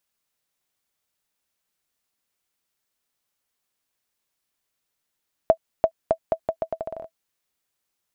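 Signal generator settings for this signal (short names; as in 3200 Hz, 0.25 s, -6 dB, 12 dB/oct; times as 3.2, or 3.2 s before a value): bouncing ball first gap 0.34 s, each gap 0.79, 652 Hz, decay 74 ms -4.5 dBFS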